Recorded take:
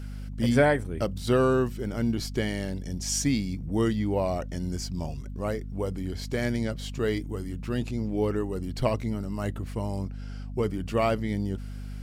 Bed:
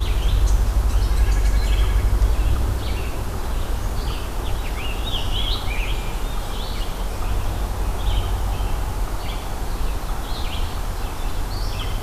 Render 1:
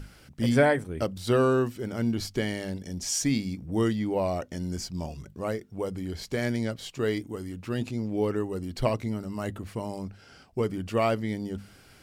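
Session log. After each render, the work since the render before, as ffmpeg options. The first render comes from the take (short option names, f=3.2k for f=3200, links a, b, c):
-af "bandreject=f=50:t=h:w=6,bandreject=f=100:t=h:w=6,bandreject=f=150:t=h:w=6,bandreject=f=200:t=h:w=6,bandreject=f=250:t=h:w=6"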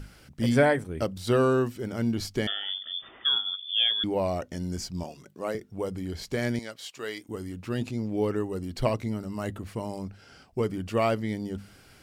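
-filter_complex "[0:a]asettb=1/sr,asplit=3[a][b][c];[a]atrim=end=2.474[d];[b]atrim=start=2.47:end=4.04,asetpts=PTS-STARTPTS,afade=t=in:d=0.004:c=qsin,afade=t=out:st=1.566:d=0.004:c=qsin,lowpass=f=3.1k:t=q:w=0.5098,lowpass=f=3.1k:t=q:w=0.6013,lowpass=f=3.1k:t=q:w=0.9,lowpass=f=3.1k:t=q:w=2.563,afreqshift=-3600[e];[c]atrim=start=4.036[f];[d][e]acrossfade=d=0.004:c1=hsin:c2=qsin[g];[g][f]acrossfade=d=0.004:c1=qsin:c2=hsin,asettb=1/sr,asplit=3[h][i][j];[h]atrim=end=5.034[k];[i]atrim=start=5.03:end=5.55,asetpts=PTS-STARTPTS,afade=t=in:d=0.004:c=qsin,afade=t=out:st=0.516:d=0.004:c=qsin,highpass=250[l];[j]atrim=start=5.546[m];[k][l]acrossfade=d=0.004:c1=hsin:c2=qsin[n];[n][m]acrossfade=d=0.004:c1=qsin:c2=hsin,asettb=1/sr,asplit=3[o][p][q];[o]atrim=end=6.594[r];[p]atrim=start=6.59:end=7.29,asetpts=PTS-STARTPTS,afade=t=in:d=0.004:c=qsin,afade=t=out:st=0.696:d=0.004:c=qsin,highpass=f=1.1k:p=1[s];[q]atrim=start=7.286[t];[r][s]acrossfade=d=0.004:c1=hsin:c2=qsin[u];[u][t]acrossfade=d=0.004:c1=qsin:c2=hsin"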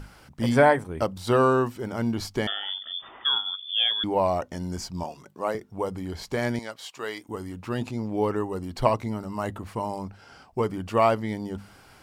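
-af "equalizer=f=940:t=o:w=0.93:g=10.5"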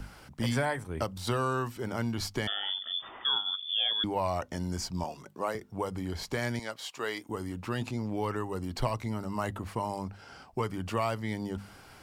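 -filter_complex "[0:a]acrossover=split=120|1000|4200[a][b][c][d];[b]acompressor=threshold=-32dB:ratio=6[e];[c]alimiter=level_in=1.5dB:limit=-24dB:level=0:latency=1:release=203,volume=-1.5dB[f];[a][e][f][d]amix=inputs=4:normalize=0"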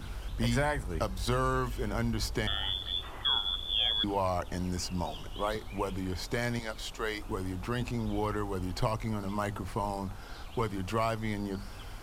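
-filter_complex "[1:a]volume=-20dB[a];[0:a][a]amix=inputs=2:normalize=0"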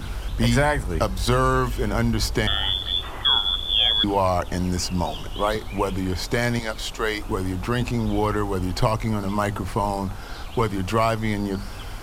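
-af "volume=9.5dB"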